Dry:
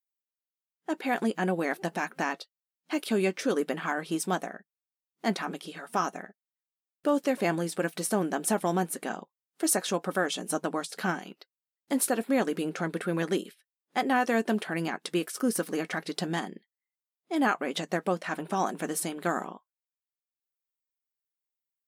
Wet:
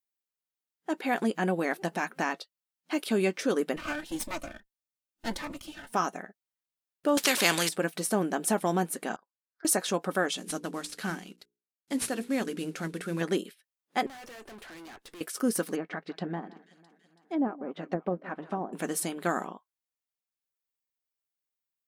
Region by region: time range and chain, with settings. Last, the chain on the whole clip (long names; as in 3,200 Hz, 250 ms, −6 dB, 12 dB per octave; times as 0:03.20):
0:03.76–0:05.92: lower of the sound and its delayed copy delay 3.3 ms + notch filter 390 Hz, Q 5.2 + phaser whose notches keep moving one way rising 1.7 Hz
0:07.17–0:07.69: meter weighting curve D + every bin compressed towards the loudest bin 2 to 1
0:09.16–0:09.65: pair of resonant band-passes 2,800 Hz, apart 1.7 octaves + high-frequency loss of the air 310 metres
0:10.37–0:13.21: variable-slope delta modulation 64 kbit/s + parametric band 780 Hz −7.5 dB 2.1 octaves + mains-hum notches 60/120/180/240/300/360/420/480 Hz
0:14.06–0:15.21: parametric band 160 Hz −13.5 dB 0.92 octaves + tube saturation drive 45 dB, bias 0.65
0:15.75–0:18.73: delay that swaps between a low-pass and a high-pass 165 ms, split 1,600 Hz, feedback 74%, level −14 dB + treble cut that deepens with the level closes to 600 Hz, closed at −24 dBFS + expander for the loud parts, over −46 dBFS
whole clip: no processing